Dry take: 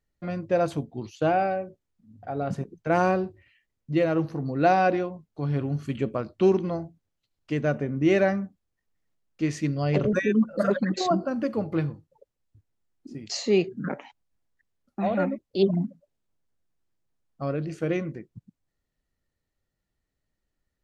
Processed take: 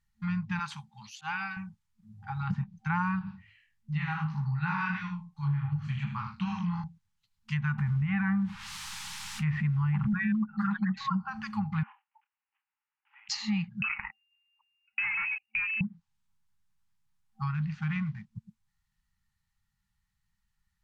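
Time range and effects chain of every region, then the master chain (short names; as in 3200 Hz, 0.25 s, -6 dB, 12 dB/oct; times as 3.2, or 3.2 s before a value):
0.59–1.57 HPF 780 Hz 6 dB/oct + auto swell 0.11 s
3.19–6.84 doubler 40 ms -8.5 dB + chorus 2.7 Hz, delay 18 ms, depth 5.9 ms + echo 77 ms -7 dB
7.78–10.44 Bessel low-pass 2100 Hz, order 4 + requantised 10-bit, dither triangular + fast leveller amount 50%
11.83–13.29 block floating point 5-bit + Chebyshev band-pass 670–2900 Hz, order 5 + doubler 28 ms -10 dB
13.82–15.81 sample leveller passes 3 + compressor, threshold -30 dBFS + inverted band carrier 2800 Hz
17.54–18.25 CVSD 64 kbps + air absorption 180 m
whole clip: FFT band-reject 220–780 Hz; treble ducked by the level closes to 2100 Hz, closed at -27 dBFS; compressor, threshold -28 dBFS; gain +2.5 dB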